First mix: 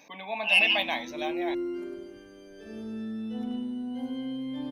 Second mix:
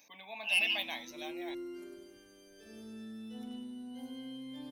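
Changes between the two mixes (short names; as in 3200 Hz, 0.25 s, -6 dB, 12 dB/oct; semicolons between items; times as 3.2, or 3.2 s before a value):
background +3.0 dB; master: add pre-emphasis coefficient 0.8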